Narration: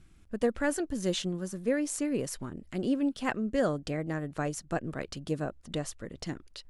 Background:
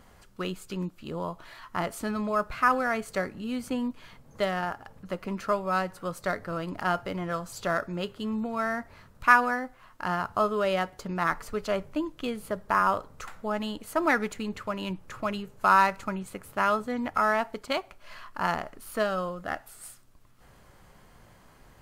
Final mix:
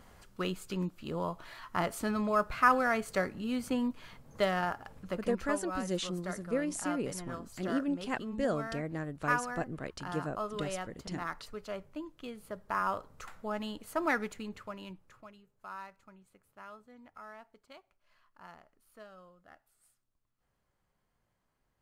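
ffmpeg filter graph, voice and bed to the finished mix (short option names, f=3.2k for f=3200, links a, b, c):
-filter_complex "[0:a]adelay=4850,volume=-4dB[a];[1:a]volume=4dB,afade=t=out:st=4.98:d=0.6:silence=0.316228,afade=t=in:st=12.34:d=0.93:silence=0.530884,afade=t=out:st=14.15:d=1.17:silence=0.11885[b];[a][b]amix=inputs=2:normalize=0"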